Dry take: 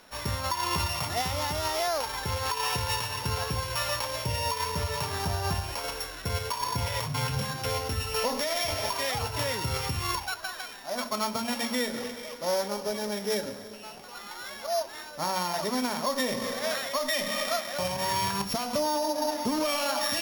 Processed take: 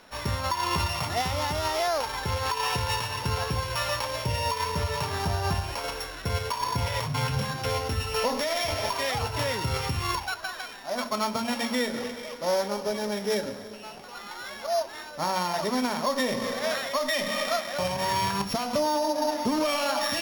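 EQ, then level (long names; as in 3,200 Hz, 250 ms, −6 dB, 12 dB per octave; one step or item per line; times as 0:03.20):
high-shelf EQ 7,000 Hz −7.5 dB
+2.5 dB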